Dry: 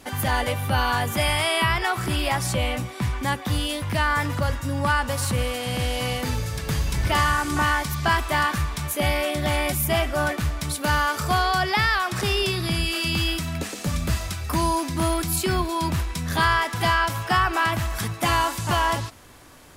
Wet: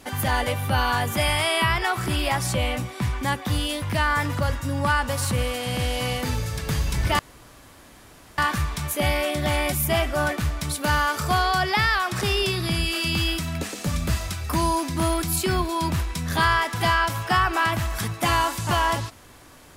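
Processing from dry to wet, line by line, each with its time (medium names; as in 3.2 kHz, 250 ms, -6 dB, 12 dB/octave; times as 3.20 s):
7.19–8.38 s: room tone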